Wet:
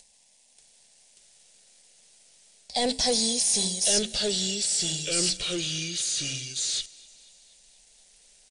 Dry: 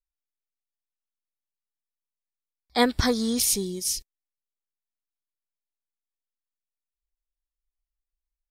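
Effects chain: tone controls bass -15 dB, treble +11 dB; comb 1.5 ms, depth 32%; de-hum 65.58 Hz, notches 7; reverse; compression 12:1, threshold -25 dBFS, peak gain reduction 16 dB; reverse; peak limiter -22 dBFS, peak gain reduction 8.5 dB; upward compressor, threshold -44 dBFS; waveshaping leveller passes 3; static phaser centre 350 Hz, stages 6; ever faster or slower copies 585 ms, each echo -3 st, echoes 2; on a send: thinning echo 240 ms, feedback 65%, high-pass 270 Hz, level -23.5 dB; on the sum: trim +4 dB; MP2 192 kbps 32 kHz

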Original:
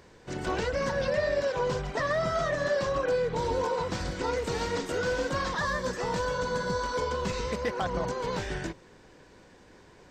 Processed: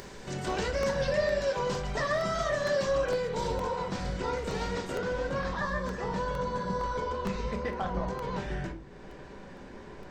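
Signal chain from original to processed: treble shelf 3.8 kHz +5.5 dB, from 3.52 s -4 dB, from 4.97 s -11.5 dB; upward compressor, threshold -34 dBFS; simulated room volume 370 m³, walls furnished, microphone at 1.2 m; crackling interface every 0.46 s, samples 64, repeat, from 0.83 s; trim -3 dB

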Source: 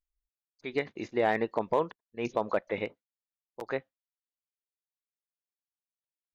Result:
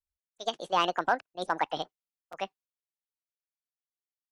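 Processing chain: gliding tape speed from 164% -> 130%; three bands expanded up and down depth 40%

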